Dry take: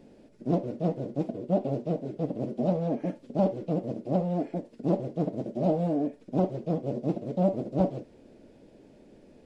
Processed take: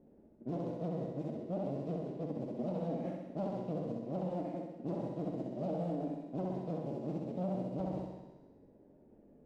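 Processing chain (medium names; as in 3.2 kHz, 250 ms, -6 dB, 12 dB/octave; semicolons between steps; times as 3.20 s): level-controlled noise filter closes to 820 Hz, open at -26 dBFS; feedback comb 76 Hz, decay 1.5 s, harmonics all, mix 70%; flutter echo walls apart 11.1 m, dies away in 1 s; peak limiter -28 dBFS, peak gain reduction 7 dB; sliding maximum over 3 samples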